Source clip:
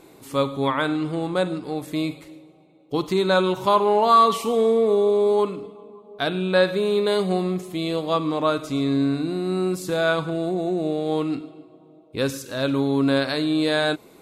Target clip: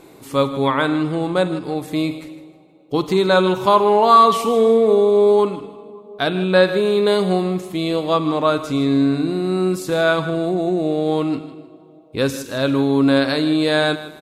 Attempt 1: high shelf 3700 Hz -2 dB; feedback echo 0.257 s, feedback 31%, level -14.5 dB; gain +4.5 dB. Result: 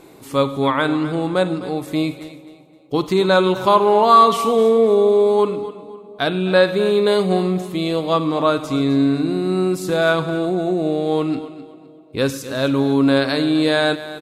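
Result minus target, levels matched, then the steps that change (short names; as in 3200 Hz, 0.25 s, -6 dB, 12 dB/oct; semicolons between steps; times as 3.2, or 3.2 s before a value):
echo 0.101 s late
change: feedback echo 0.156 s, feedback 31%, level -14.5 dB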